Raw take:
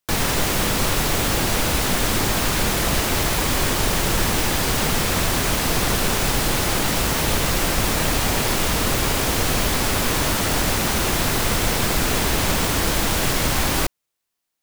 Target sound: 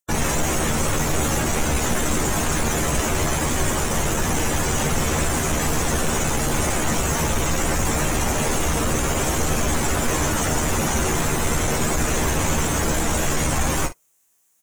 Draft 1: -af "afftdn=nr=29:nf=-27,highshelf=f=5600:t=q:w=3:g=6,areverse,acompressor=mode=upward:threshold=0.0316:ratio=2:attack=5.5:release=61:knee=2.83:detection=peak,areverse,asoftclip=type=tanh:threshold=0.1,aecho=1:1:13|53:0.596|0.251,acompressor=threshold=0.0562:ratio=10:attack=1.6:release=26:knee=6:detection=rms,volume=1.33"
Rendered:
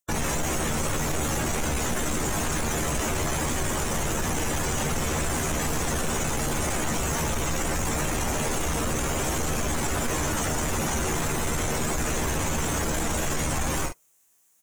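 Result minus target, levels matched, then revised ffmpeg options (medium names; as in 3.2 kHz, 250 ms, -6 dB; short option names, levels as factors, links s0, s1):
compression: peak gain reduction +8 dB
-af "afftdn=nr=29:nf=-27,highshelf=f=5600:t=q:w=3:g=6,areverse,acompressor=mode=upward:threshold=0.0316:ratio=2:attack=5.5:release=61:knee=2.83:detection=peak,areverse,asoftclip=type=tanh:threshold=0.1,aecho=1:1:13|53:0.596|0.251,volume=1.33"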